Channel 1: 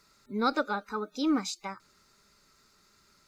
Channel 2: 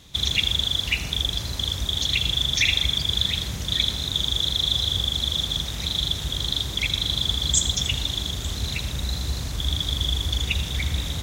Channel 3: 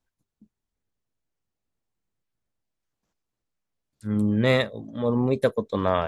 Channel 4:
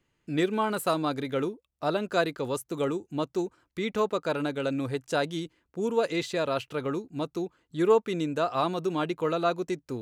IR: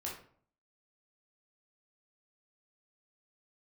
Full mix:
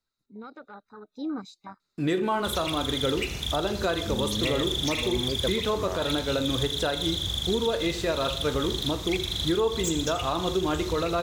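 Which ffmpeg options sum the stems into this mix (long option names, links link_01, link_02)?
-filter_complex "[0:a]afwtdn=0.02,equalizer=frequency=3900:width_type=o:width=0.2:gain=12.5,alimiter=limit=-23.5dB:level=0:latency=1:release=27,volume=-2dB,afade=type=in:start_time=1.05:duration=0.21:silence=0.375837[link_01];[1:a]asoftclip=type=hard:threshold=-18.5dB,adelay=2300,volume=-4dB[link_02];[2:a]volume=-8dB[link_03];[3:a]bandreject=frequency=2300:width=21,aeval=exprs='sgn(val(0))*max(abs(val(0))-0.002,0)':channel_layout=same,adelay=1700,volume=2dB,asplit=2[link_04][link_05];[link_05]volume=-4dB[link_06];[4:a]atrim=start_sample=2205[link_07];[link_06][link_07]afir=irnorm=-1:irlink=0[link_08];[link_01][link_02][link_03][link_04][link_08]amix=inputs=5:normalize=0,alimiter=limit=-16.5dB:level=0:latency=1:release=221"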